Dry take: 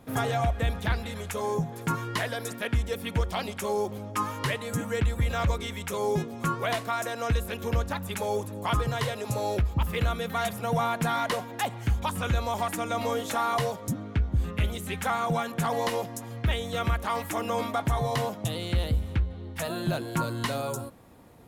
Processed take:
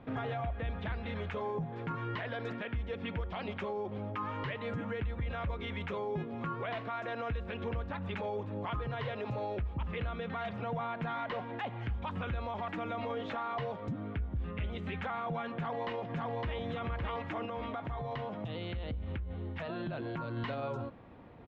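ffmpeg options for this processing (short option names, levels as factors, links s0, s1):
-filter_complex "[0:a]asplit=2[s0][s1];[s1]afade=t=in:st=15.53:d=0.01,afade=t=out:st=16.6:d=0.01,aecho=0:1:560|1120|1680|2240|2800:0.707946|0.247781|0.0867234|0.0303532|0.0106236[s2];[s0][s2]amix=inputs=2:normalize=0,asettb=1/sr,asplit=3[s3][s4][s5];[s3]atrim=end=17.454[s6];[s4]atrim=start=17.45:end=20.37,asetpts=PTS-STARTPTS,afade=t=in:d=0.004:c=qsin,afade=t=out:st=2.916:d=0.004:c=qsin,acompressor=threshold=0.0224:ratio=10:attack=3.2:release=140:knee=1:detection=peak[s7];[s5]atrim=start=20.366[s8];[s6][s7]acrossfade=d=0.004:c1=hsin:c2=qsin[s9];[s9][s8]acrossfade=d=0.004:c1=qsin:c2=hsin,lowpass=f=3100:w=0.5412,lowpass=f=3100:w=1.3066,acompressor=threshold=0.0224:ratio=2.5,alimiter=level_in=1.78:limit=0.0631:level=0:latency=1:release=18,volume=0.562"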